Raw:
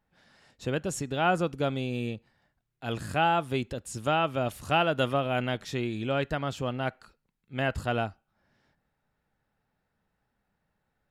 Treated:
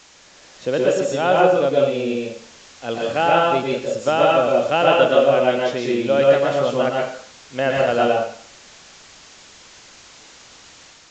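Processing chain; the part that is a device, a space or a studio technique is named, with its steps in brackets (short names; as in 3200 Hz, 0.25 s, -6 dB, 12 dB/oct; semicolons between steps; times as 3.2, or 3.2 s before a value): filmed off a television (BPF 190–7900 Hz; bell 530 Hz +10 dB 0.44 oct; reverb RT60 0.50 s, pre-delay 0.111 s, DRR -3 dB; white noise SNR 22 dB; AGC gain up to 4 dB; gain +1 dB; AAC 64 kbps 16000 Hz)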